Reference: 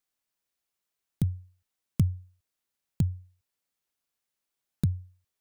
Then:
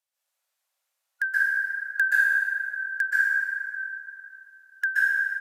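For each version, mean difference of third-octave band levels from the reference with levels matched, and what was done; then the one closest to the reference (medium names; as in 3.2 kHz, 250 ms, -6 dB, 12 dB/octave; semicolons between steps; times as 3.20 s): 13.5 dB: four frequency bands reordered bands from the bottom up 2143; plate-style reverb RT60 2.8 s, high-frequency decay 0.5×, pre-delay 115 ms, DRR -9.5 dB; resampled via 32 kHz; brick-wall FIR high-pass 500 Hz; trim -1.5 dB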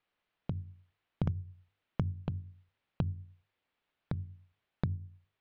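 7.5 dB: low-pass 3.3 kHz 24 dB/octave; hum notches 50/100/150/200/250/300/350/400 Hz; compression 6:1, threshold -37 dBFS, peak gain reduction 16 dB; on a send: reverse echo 722 ms -3.5 dB; on the sum: trim +6.5 dB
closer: second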